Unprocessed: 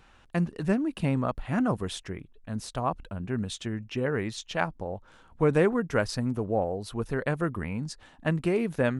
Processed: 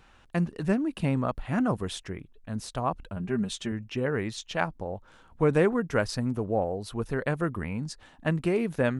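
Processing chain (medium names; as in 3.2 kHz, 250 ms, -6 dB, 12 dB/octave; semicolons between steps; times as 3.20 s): 3.16–3.72 s: comb 5 ms, depth 64%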